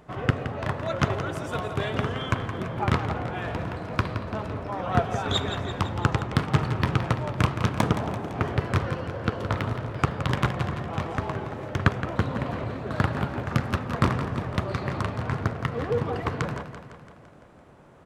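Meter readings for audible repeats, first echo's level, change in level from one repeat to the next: 6, −10.5 dB, −4.5 dB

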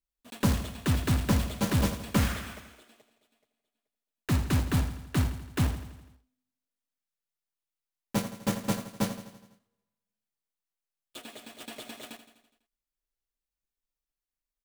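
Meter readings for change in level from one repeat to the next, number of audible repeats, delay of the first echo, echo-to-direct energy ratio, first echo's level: −4.5 dB, 5, 83 ms, −10.0 dB, −12.0 dB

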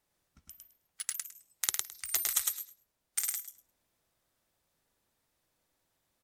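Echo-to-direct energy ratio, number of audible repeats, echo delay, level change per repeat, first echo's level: −3.0 dB, 3, 106 ms, −16.0 dB, −3.0 dB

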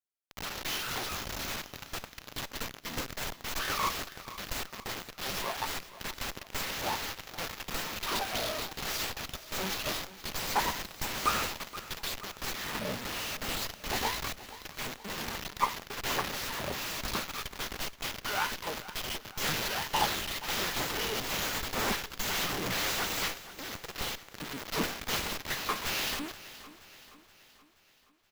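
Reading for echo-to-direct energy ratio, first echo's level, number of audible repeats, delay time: −14.5 dB, −16.0 dB, 4, 475 ms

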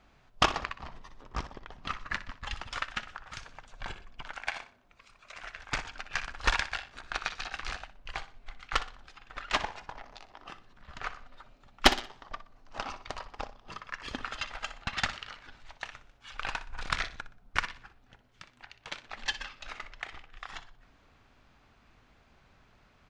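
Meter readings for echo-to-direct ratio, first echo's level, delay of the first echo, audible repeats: −13.5 dB, −14.0 dB, 61 ms, 3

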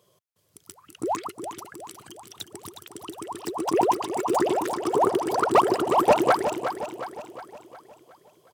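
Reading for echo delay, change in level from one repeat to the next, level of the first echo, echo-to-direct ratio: 361 ms, −6.0 dB, −9.0 dB, −8.0 dB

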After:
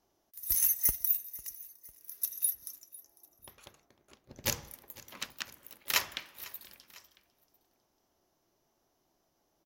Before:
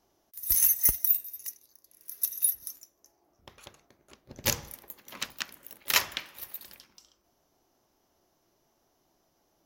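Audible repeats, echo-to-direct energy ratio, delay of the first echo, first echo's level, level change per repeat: 2, −19.5 dB, 500 ms, −20.5 dB, −5.5 dB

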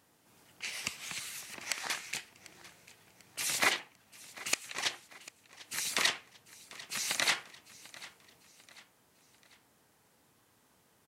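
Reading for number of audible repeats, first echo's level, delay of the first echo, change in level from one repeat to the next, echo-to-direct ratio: 3, −19.0 dB, 745 ms, −7.0 dB, −18.0 dB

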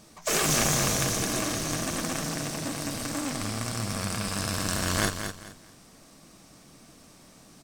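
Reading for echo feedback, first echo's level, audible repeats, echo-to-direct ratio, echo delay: 27%, −8.0 dB, 3, −7.5 dB, 215 ms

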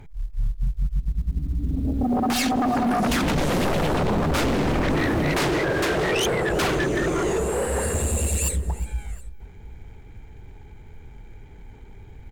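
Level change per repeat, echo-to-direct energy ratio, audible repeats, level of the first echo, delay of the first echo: −5.5 dB, −19.0 dB, 2, −20.0 dB, 360 ms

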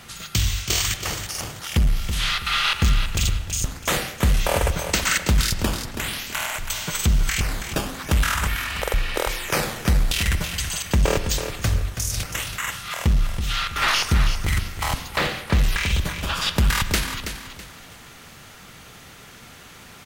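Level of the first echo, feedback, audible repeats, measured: −9.0 dB, 32%, 3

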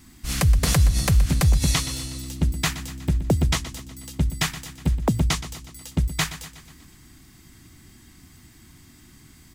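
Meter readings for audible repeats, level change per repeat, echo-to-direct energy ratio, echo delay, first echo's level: 5, −5.0 dB, −12.5 dB, 122 ms, −14.0 dB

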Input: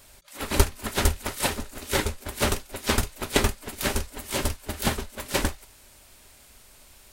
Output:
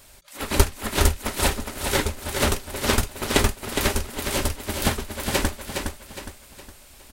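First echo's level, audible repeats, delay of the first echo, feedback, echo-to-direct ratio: −6.0 dB, 4, 413 ms, 39%, −5.5 dB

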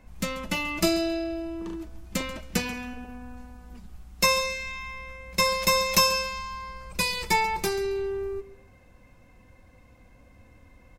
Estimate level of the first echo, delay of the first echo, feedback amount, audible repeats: −16.5 dB, 137 ms, 23%, 2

